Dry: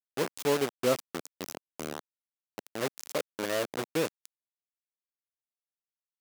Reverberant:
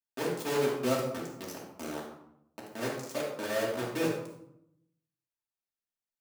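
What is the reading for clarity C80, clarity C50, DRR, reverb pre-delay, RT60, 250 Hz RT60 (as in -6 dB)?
6.0 dB, 2.5 dB, -5.5 dB, 3 ms, 0.75 s, 1.0 s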